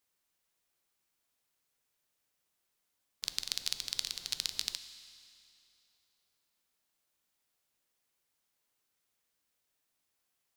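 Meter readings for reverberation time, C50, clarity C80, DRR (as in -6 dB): 2.7 s, 11.5 dB, 12.0 dB, 10.5 dB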